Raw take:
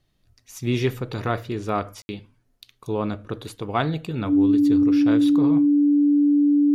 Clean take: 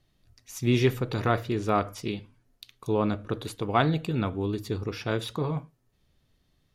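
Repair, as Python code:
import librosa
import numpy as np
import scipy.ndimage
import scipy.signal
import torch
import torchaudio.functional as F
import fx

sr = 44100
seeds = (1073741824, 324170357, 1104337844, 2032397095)

y = fx.notch(x, sr, hz=290.0, q=30.0)
y = fx.fix_ambience(y, sr, seeds[0], print_start_s=0.0, print_end_s=0.5, start_s=2.02, end_s=2.09)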